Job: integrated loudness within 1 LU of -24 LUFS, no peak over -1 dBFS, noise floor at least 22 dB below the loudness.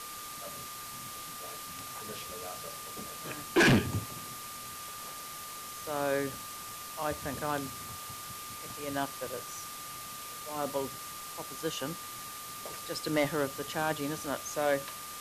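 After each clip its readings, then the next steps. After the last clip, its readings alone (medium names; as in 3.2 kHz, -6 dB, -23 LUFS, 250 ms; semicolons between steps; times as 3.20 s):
steady tone 1.2 kHz; tone level -45 dBFS; noise floor -43 dBFS; noise floor target -57 dBFS; loudness -35.0 LUFS; peak level -18.0 dBFS; loudness target -24.0 LUFS
-> band-stop 1.2 kHz, Q 30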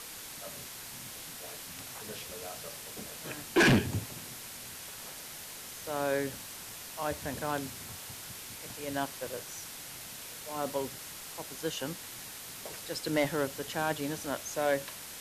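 steady tone not found; noise floor -45 dBFS; noise floor target -57 dBFS
-> noise print and reduce 12 dB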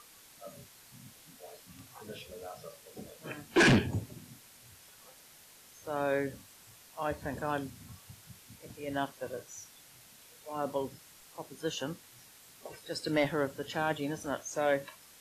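noise floor -57 dBFS; loudness -33.0 LUFS; peak level -18.0 dBFS; loudness target -24.0 LUFS
-> trim +9 dB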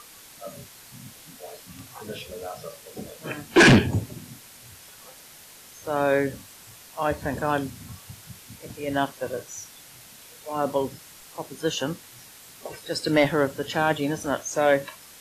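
loudness -24.0 LUFS; peak level -9.0 dBFS; noise floor -48 dBFS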